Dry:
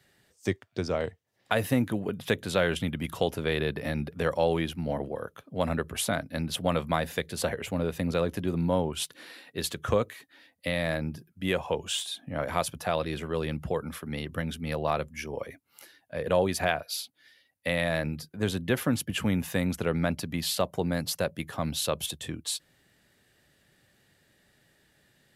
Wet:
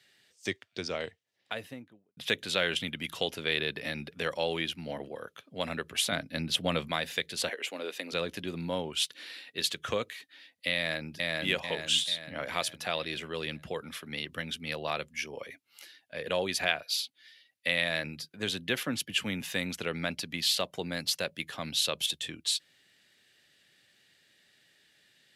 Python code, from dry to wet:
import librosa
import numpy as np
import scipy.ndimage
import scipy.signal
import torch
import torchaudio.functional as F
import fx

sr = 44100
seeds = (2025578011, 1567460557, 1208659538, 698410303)

y = fx.studio_fade_out(x, sr, start_s=0.96, length_s=1.21)
y = fx.low_shelf(y, sr, hz=430.0, db=7.0, at=(6.12, 6.88))
y = fx.highpass(y, sr, hz=290.0, slope=24, at=(7.49, 8.13))
y = fx.echo_throw(y, sr, start_s=10.75, length_s=0.4, ms=440, feedback_pct=50, wet_db=-0.5)
y = fx.band_widen(y, sr, depth_pct=40, at=(18.83, 19.41))
y = fx.weighting(y, sr, curve='D')
y = F.gain(torch.from_numpy(y), -6.0).numpy()